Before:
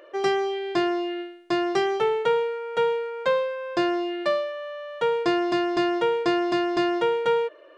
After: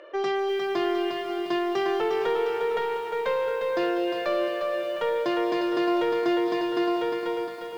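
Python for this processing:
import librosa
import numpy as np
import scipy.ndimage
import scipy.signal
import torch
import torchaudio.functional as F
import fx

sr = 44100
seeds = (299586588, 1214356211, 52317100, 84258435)

p1 = fx.fade_out_tail(x, sr, length_s=1.67)
p2 = fx.echo_diffused(p1, sr, ms=547, feedback_pct=43, wet_db=-14.5)
p3 = fx.over_compress(p2, sr, threshold_db=-27.0, ratio=-1.0)
p4 = p2 + F.gain(torch.from_numpy(p3), -2.0).numpy()
p5 = scipy.signal.sosfilt(scipy.signal.bessel(2, 170.0, 'highpass', norm='mag', fs=sr, output='sos'), p4)
p6 = 10.0 ** (-16.0 / 20.0) * np.tanh(p5 / 10.0 ** (-16.0 / 20.0))
p7 = scipy.signal.sosfilt(scipy.signal.butter(2, 5200.0, 'lowpass', fs=sr, output='sos'), p6)
p8 = fx.echo_crushed(p7, sr, ms=354, feedback_pct=55, bits=8, wet_db=-5.5)
y = F.gain(torch.from_numpy(p8), -4.0).numpy()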